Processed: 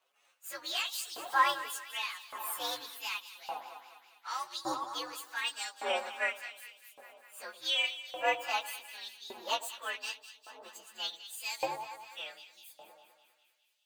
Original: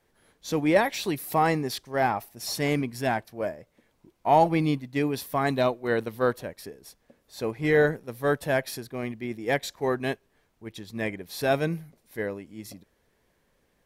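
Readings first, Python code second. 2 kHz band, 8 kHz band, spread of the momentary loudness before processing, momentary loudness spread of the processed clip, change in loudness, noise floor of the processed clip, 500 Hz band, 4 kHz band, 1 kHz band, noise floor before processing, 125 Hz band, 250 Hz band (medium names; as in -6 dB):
-5.0 dB, -2.0 dB, 17 LU, 20 LU, -8.5 dB, -72 dBFS, -16.5 dB, +3.0 dB, -7.0 dB, -70 dBFS, under -35 dB, -24.5 dB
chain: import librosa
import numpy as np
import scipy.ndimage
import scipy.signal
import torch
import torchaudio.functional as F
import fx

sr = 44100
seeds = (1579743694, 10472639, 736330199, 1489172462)

y = fx.partial_stretch(x, sr, pct=126)
y = fx.echo_alternate(y, sr, ms=101, hz=890.0, feedback_pct=80, wet_db=-10.5)
y = fx.filter_lfo_highpass(y, sr, shape='saw_up', hz=0.86, low_hz=730.0, high_hz=3900.0, q=1.1)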